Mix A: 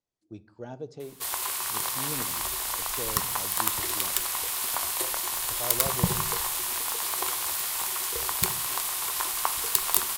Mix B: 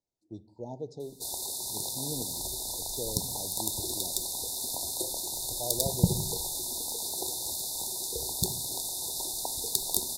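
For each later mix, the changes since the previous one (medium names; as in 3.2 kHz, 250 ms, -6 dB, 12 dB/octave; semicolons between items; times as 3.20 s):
background: add fifteen-band graphic EQ 100 Hz +4 dB, 250 Hz +5 dB, 1 kHz -11 dB, 16 kHz -10 dB; master: add brick-wall FIR band-stop 1–3.5 kHz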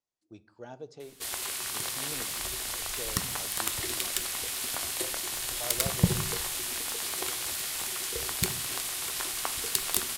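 speech: add bass shelf 470 Hz -9 dB; master: remove brick-wall FIR band-stop 1–3.5 kHz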